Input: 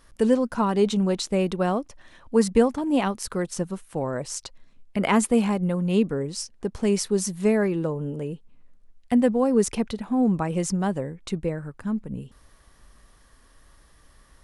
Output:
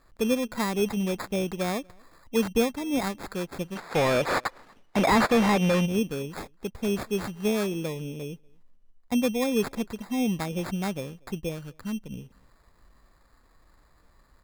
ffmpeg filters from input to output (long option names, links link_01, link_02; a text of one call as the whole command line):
ffmpeg -i in.wav -filter_complex "[0:a]acrusher=samples=15:mix=1:aa=0.000001,asplit=3[link_01][link_02][link_03];[link_01]afade=type=out:start_time=3.75:duration=0.02[link_04];[link_02]asplit=2[link_05][link_06];[link_06]highpass=frequency=720:poles=1,volume=27dB,asoftclip=type=tanh:threshold=-8dB[link_07];[link_05][link_07]amix=inputs=2:normalize=0,lowpass=frequency=3600:poles=1,volume=-6dB,afade=type=in:start_time=3.75:duration=0.02,afade=type=out:start_time=5.85:duration=0.02[link_08];[link_03]afade=type=in:start_time=5.85:duration=0.02[link_09];[link_04][link_08][link_09]amix=inputs=3:normalize=0,asplit=2[link_10][link_11];[link_11]adelay=239.1,volume=-29dB,highshelf=frequency=4000:gain=-5.38[link_12];[link_10][link_12]amix=inputs=2:normalize=0,volume=-5dB" out.wav